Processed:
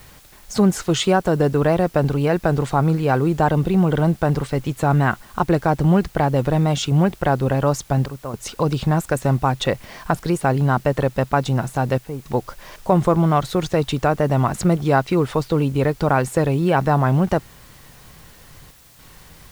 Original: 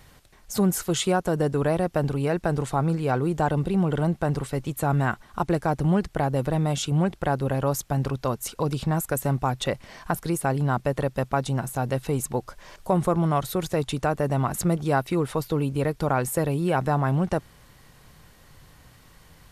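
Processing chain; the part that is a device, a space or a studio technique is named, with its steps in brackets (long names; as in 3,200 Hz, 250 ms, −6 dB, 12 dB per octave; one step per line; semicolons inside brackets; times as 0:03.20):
worn cassette (low-pass filter 6,300 Hz 12 dB per octave; tape wow and flutter; tape dropouts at 0:08.06/0:11.98/0:18.71, 275 ms −10 dB; white noise bed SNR 31 dB)
level +6 dB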